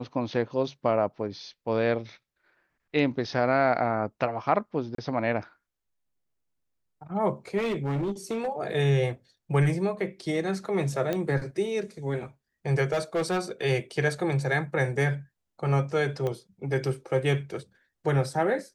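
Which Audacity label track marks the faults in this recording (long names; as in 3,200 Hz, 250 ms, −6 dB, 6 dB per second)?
4.950000	4.980000	drop-out 33 ms
7.570000	8.480000	clipping −25 dBFS
11.130000	11.130000	click −15 dBFS
12.920000	13.400000	clipping −22.5 dBFS
16.270000	16.270000	click −19 dBFS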